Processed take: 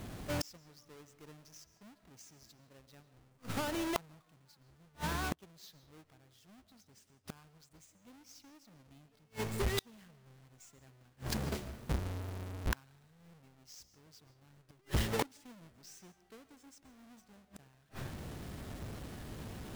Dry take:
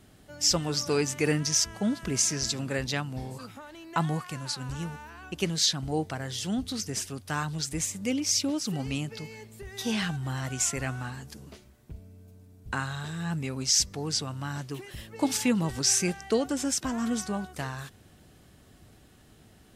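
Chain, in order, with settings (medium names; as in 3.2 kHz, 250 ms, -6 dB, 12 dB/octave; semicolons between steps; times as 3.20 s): square wave that keeps the level; algorithmic reverb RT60 0.64 s, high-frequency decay 0.6×, pre-delay 95 ms, DRR 13 dB; inverted gate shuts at -28 dBFS, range -39 dB; trim +5 dB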